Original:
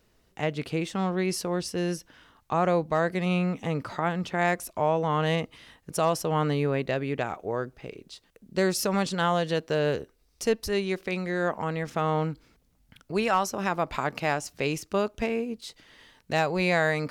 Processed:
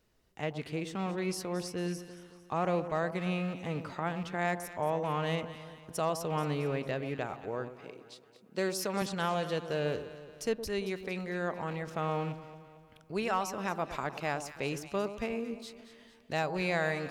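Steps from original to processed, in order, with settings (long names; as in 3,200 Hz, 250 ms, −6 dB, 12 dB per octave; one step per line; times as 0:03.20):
loose part that buzzes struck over −31 dBFS, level −33 dBFS
0:07.74–0:09.02: high-pass filter 190 Hz 12 dB per octave
delay that swaps between a low-pass and a high-pass 113 ms, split 1,100 Hz, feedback 70%, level −10.5 dB
level −7 dB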